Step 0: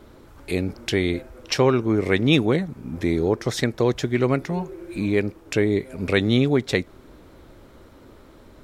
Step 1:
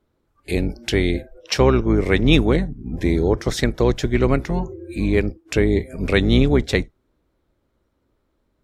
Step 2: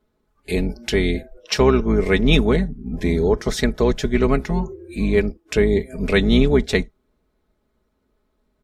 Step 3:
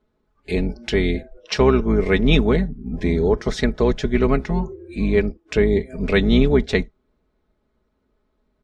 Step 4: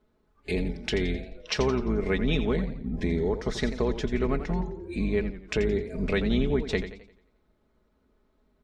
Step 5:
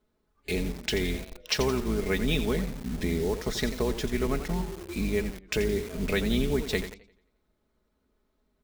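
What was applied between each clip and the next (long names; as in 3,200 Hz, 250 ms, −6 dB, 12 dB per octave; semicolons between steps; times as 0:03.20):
sub-octave generator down 2 octaves, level −1 dB; noise reduction from a noise print of the clip's start 24 dB; level +2 dB
comb filter 4.7 ms, depth 57%; level −1 dB
high-frequency loss of the air 85 metres
downward compressor 2 to 1, threshold −30 dBFS, peak gain reduction 11 dB; feedback echo with a swinging delay time 87 ms, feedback 43%, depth 108 cents, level −11 dB
in parallel at −5 dB: bit reduction 6 bits; on the sum: high-shelf EQ 3,500 Hz +8 dB; level −5.5 dB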